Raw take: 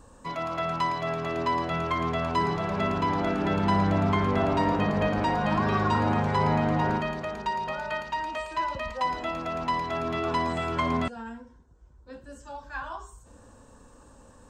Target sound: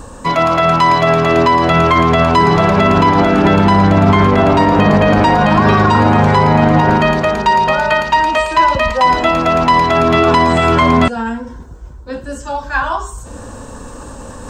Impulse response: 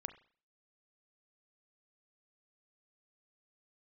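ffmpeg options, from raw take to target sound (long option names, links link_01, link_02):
-af "areverse,acompressor=mode=upward:threshold=-43dB:ratio=2.5,areverse,alimiter=level_in=20dB:limit=-1dB:release=50:level=0:latency=1,volume=-1dB"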